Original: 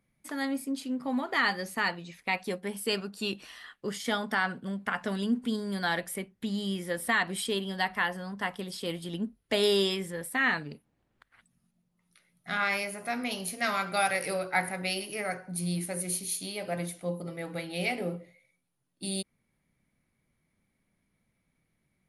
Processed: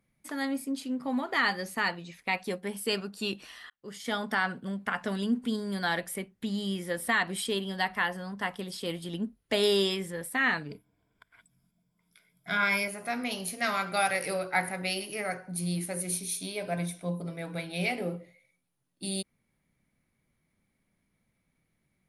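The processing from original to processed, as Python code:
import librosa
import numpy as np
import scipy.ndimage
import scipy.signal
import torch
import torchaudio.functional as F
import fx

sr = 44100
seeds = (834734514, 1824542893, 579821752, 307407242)

y = fx.ripple_eq(x, sr, per_octave=1.7, db=12, at=(10.69, 12.88))
y = fx.ripple_eq(y, sr, per_octave=1.6, db=7, at=(16.11, 17.86))
y = fx.edit(y, sr, fx.fade_in_span(start_s=3.7, length_s=0.53), tone=tone)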